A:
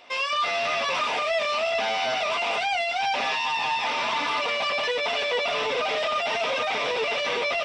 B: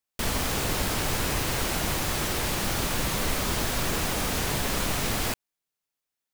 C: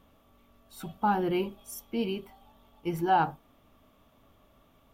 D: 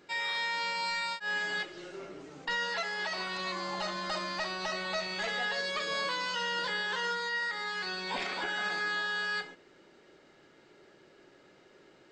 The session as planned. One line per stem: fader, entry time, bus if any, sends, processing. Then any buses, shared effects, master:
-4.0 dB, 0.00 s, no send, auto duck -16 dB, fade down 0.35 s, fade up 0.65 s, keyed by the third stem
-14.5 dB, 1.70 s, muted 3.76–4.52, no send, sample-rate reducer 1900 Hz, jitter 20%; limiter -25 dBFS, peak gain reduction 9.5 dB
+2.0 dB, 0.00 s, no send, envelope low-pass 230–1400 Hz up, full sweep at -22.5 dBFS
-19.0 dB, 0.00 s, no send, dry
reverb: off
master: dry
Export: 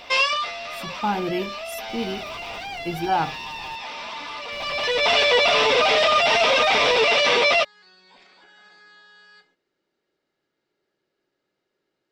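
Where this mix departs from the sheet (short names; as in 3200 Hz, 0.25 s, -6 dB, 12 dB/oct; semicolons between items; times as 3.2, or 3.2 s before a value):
stem A -4.0 dB -> +7.5 dB; stem C: missing envelope low-pass 230–1400 Hz up, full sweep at -22.5 dBFS; master: extra bell 4500 Hz +4 dB 0.83 oct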